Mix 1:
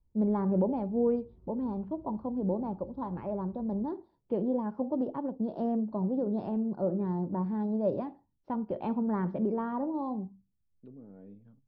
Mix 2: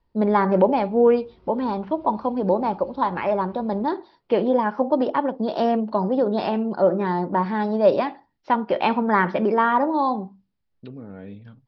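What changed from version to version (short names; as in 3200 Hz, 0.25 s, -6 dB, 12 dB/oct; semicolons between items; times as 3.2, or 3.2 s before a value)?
second voice: remove BPF 270–3300 Hz; master: remove EQ curve 110 Hz 0 dB, 1100 Hz -19 dB, 2000 Hz -28 dB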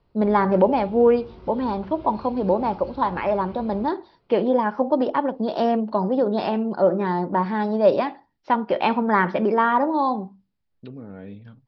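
background +11.0 dB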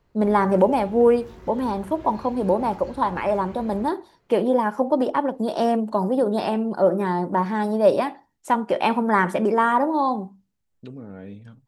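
background: add bell 1800 Hz +12.5 dB 0.35 oct; master: remove steep low-pass 5200 Hz 72 dB/oct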